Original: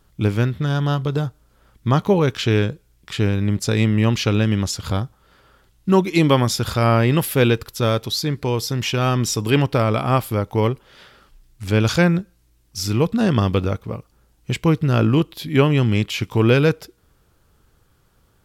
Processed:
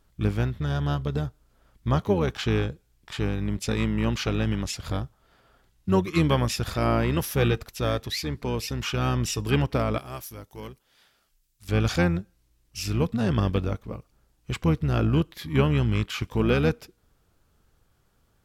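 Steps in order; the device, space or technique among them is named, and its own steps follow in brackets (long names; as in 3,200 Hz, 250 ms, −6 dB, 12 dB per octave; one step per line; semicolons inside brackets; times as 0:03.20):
0:09.98–0:11.69: first-order pre-emphasis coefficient 0.8
octave pedal (pitch-shifted copies added −12 semitones −6 dB)
level −7.5 dB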